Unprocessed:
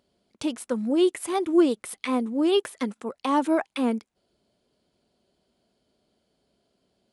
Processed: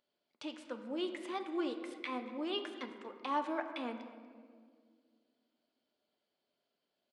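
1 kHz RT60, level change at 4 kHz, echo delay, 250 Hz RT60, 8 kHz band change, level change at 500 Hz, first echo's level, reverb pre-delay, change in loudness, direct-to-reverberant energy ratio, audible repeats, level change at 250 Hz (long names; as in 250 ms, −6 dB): 1.7 s, −9.0 dB, 238 ms, 2.6 s, below −20 dB, −15.5 dB, −18.0 dB, 3 ms, −14.5 dB, 5.5 dB, 1, −16.5 dB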